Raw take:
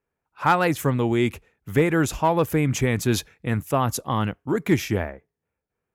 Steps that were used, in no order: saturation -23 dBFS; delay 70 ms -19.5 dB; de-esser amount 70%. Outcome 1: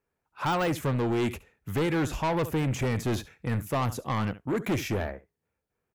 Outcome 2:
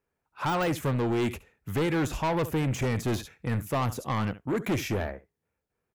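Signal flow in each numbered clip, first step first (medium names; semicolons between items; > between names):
de-esser > delay > saturation; delay > saturation > de-esser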